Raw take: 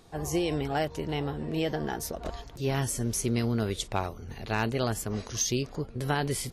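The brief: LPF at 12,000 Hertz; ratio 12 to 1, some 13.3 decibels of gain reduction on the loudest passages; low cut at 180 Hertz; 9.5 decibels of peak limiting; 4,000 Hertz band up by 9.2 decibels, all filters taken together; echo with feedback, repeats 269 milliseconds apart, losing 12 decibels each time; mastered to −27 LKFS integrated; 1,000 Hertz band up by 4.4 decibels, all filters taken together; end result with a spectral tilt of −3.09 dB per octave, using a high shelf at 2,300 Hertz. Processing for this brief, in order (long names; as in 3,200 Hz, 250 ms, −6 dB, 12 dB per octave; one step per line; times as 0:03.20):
high-pass filter 180 Hz
low-pass filter 12,000 Hz
parametric band 1,000 Hz +5 dB
high-shelf EQ 2,300 Hz +4 dB
parametric band 4,000 Hz +8 dB
downward compressor 12 to 1, threshold −32 dBFS
brickwall limiter −27.5 dBFS
repeating echo 269 ms, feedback 25%, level −12 dB
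level +12 dB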